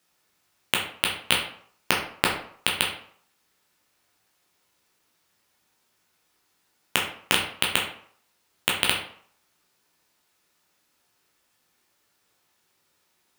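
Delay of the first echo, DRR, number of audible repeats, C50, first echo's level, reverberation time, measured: none, -2.0 dB, none, 5.5 dB, none, 0.60 s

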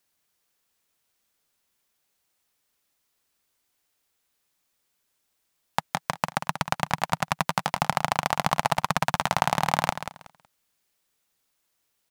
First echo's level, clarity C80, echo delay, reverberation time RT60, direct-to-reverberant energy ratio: -10.0 dB, none, 0.186 s, none, none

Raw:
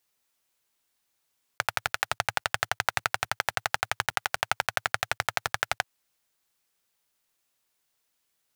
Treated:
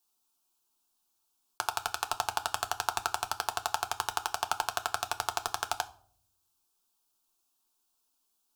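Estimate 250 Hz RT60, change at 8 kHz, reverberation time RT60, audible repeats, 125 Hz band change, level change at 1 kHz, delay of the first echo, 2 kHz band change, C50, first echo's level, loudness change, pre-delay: 0.85 s, 0.0 dB, 0.60 s, none, -9.0 dB, -0.5 dB, none, -9.5 dB, 18.5 dB, none, -4.0 dB, 4 ms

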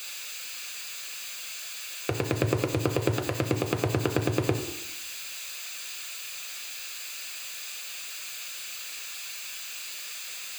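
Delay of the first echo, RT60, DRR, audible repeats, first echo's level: none, 0.85 s, 5.0 dB, none, none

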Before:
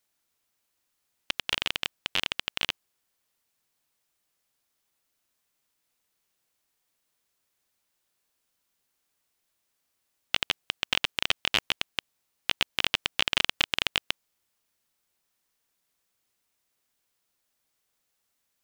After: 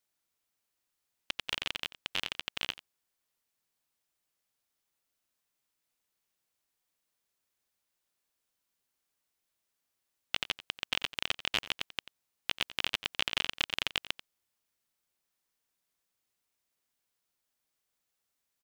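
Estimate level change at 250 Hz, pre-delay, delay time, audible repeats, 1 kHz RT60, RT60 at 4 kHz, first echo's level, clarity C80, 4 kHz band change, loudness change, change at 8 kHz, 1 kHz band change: -6.0 dB, none, 89 ms, 1, none, none, -16.0 dB, none, -6.0 dB, -6.0 dB, -6.0 dB, -6.0 dB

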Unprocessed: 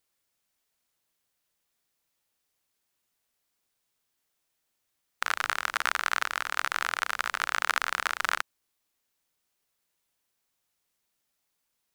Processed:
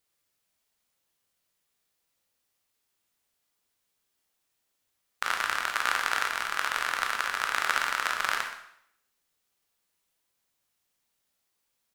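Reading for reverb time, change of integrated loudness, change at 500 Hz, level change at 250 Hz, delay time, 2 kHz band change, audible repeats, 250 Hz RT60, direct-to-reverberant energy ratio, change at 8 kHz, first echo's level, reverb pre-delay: 0.70 s, +0.5 dB, +1.5 dB, +1.0 dB, 0.124 s, +0.5 dB, 1, 0.70 s, 2.5 dB, +0.5 dB, -14.5 dB, 6 ms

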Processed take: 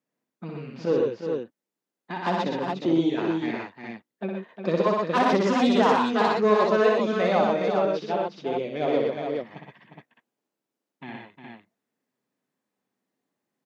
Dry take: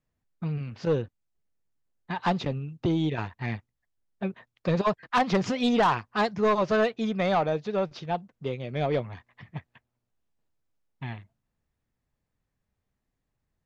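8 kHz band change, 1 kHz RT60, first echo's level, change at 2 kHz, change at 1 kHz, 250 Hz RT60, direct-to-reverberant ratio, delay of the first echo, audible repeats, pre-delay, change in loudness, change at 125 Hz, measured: n/a, none, -3.5 dB, +2.5 dB, +3.0 dB, none, none, 61 ms, 4, none, +3.5 dB, -4.0 dB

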